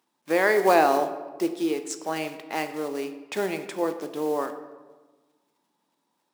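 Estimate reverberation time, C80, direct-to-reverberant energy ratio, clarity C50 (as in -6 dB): 1.3 s, 12.0 dB, 8.0 dB, 10.5 dB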